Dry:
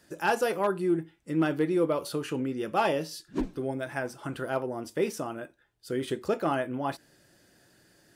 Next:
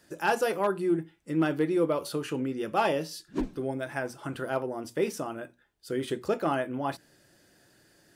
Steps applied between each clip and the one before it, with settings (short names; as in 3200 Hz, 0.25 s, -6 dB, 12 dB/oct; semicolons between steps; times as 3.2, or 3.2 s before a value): notches 60/120/180/240 Hz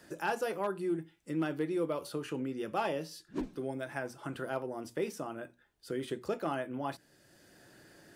three-band squash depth 40%; gain -6.5 dB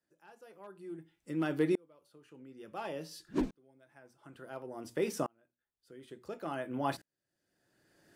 dB-ramp tremolo swelling 0.57 Hz, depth 38 dB; gain +7 dB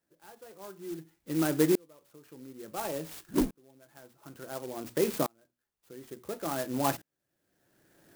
clock jitter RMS 0.08 ms; gain +5 dB